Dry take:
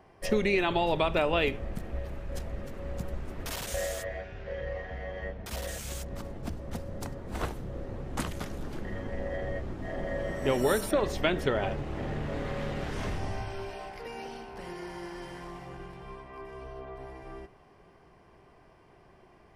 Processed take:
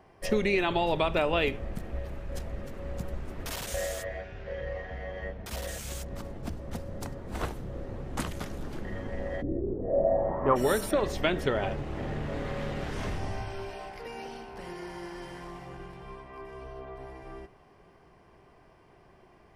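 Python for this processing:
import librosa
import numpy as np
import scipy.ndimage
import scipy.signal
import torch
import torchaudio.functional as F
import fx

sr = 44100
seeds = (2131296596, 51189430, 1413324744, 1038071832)

y = fx.lowpass_res(x, sr, hz=fx.line((9.41, 280.0), (10.55, 1200.0)), q=6.8, at=(9.41, 10.55), fade=0.02)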